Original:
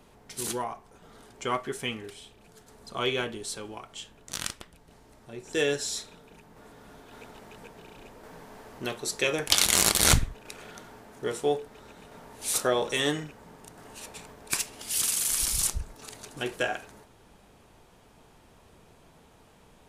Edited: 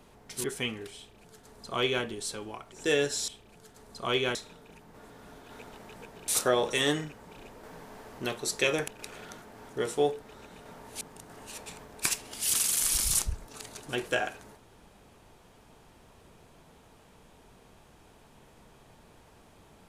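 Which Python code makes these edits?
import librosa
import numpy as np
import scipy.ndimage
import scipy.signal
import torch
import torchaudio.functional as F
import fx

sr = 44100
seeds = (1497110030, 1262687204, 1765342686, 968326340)

y = fx.edit(x, sr, fx.cut(start_s=0.44, length_s=1.23),
    fx.duplicate(start_s=2.2, length_s=1.07, to_s=5.97),
    fx.cut(start_s=3.95, length_s=1.46),
    fx.cut(start_s=9.48, length_s=0.86),
    fx.reverse_span(start_s=10.88, length_s=0.27),
    fx.move(start_s=12.47, length_s=1.02, to_s=7.9), tone=tone)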